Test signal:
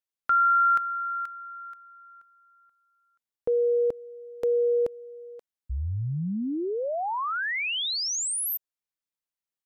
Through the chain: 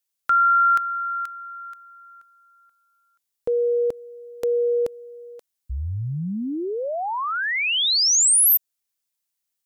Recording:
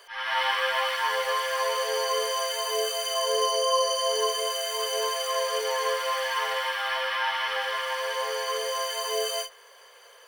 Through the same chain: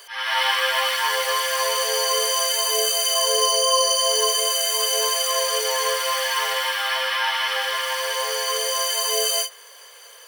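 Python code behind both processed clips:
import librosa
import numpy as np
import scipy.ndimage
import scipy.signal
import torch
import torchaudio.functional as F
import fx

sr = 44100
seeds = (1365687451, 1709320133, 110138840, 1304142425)

y = fx.high_shelf(x, sr, hz=3400.0, db=12.0)
y = y * 10.0 ** (2.0 / 20.0)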